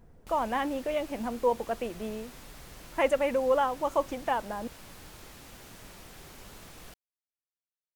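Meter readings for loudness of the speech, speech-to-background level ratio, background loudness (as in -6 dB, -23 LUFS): -30.0 LUFS, 18.5 dB, -48.5 LUFS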